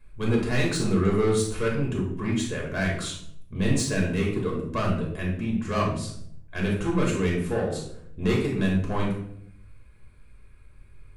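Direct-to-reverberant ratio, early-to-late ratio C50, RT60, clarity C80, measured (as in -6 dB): -3.0 dB, 3.5 dB, 0.70 s, 7.5 dB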